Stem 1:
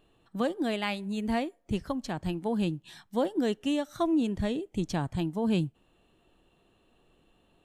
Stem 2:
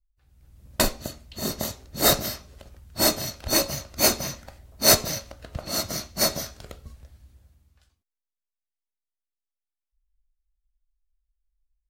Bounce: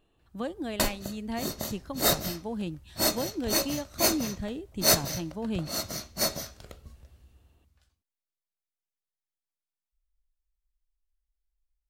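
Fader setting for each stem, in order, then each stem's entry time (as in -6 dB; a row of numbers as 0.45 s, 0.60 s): -5.0 dB, -5.0 dB; 0.00 s, 0.00 s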